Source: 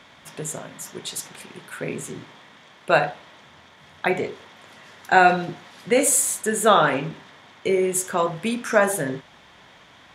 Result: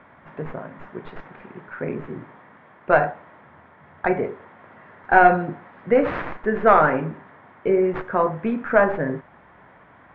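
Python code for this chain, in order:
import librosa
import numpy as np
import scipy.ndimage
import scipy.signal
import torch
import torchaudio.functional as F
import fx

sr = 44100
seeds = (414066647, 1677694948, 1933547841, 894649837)

y = fx.tracing_dist(x, sr, depth_ms=0.24)
y = scipy.signal.sosfilt(scipy.signal.butter(4, 1800.0, 'lowpass', fs=sr, output='sos'), y)
y = F.gain(torch.from_numpy(y), 2.0).numpy()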